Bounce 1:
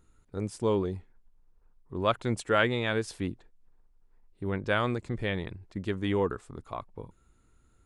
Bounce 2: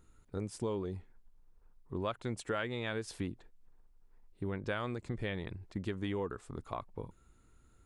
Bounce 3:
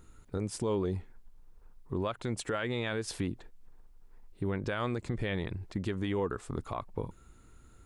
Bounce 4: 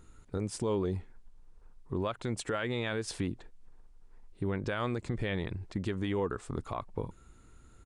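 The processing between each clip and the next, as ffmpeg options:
-af "acompressor=threshold=0.02:ratio=4"
-af "alimiter=level_in=2:limit=0.0631:level=0:latency=1:release=103,volume=0.501,volume=2.37"
-af "aresample=22050,aresample=44100"

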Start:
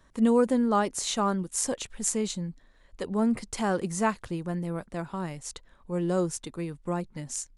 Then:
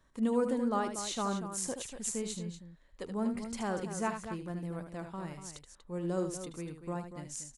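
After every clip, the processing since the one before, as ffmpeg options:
-af "aecho=1:1:75.8|239.1:0.398|0.316,volume=0.398"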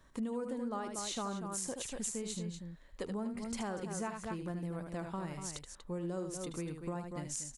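-af "acompressor=threshold=0.00891:ratio=6,volume=1.78"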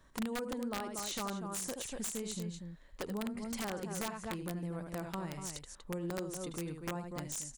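-af "aeval=exprs='(mod(31.6*val(0)+1,2)-1)/31.6':c=same"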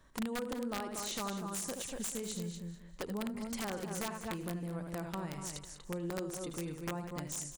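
-af "aecho=1:1:198|396|594:0.224|0.0694|0.0215"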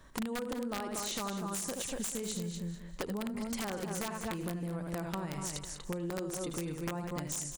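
-af "acompressor=threshold=0.01:ratio=6,volume=2.11"

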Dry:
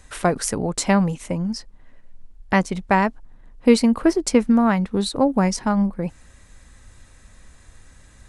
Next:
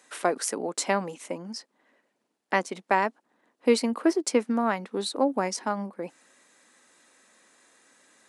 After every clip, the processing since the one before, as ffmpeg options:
-af "highpass=f=270:w=0.5412,highpass=f=270:w=1.3066,volume=0.596"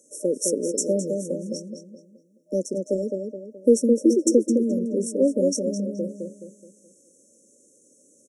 -filter_complex "[0:a]asplit=2[s0][s1];[s1]adelay=212,lowpass=f=3200:p=1,volume=0.596,asplit=2[s2][s3];[s3]adelay=212,lowpass=f=3200:p=1,volume=0.41,asplit=2[s4][s5];[s5]adelay=212,lowpass=f=3200:p=1,volume=0.41,asplit=2[s6][s7];[s7]adelay=212,lowpass=f=3200:p=1,volume=0.41,asplit=2[s8][s9];[s9]adelay=212,lowpass=f=3200:p=1,volume=0.41[s10];[s0][s2][s4][s6][s8][s10]amix=inputs=6:normalize=0,acontrast=28,afftfilt=real='re*(1-between(b*sr/4096,610,5400))':imag='im*(1-between(b*sr/4096,610,5400))':win_size=4096:overlap=0.75"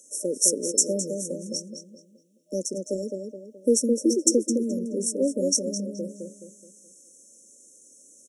-af "highshelf=f=2200:t=q:w=3:g=9.5,volume=0.631"

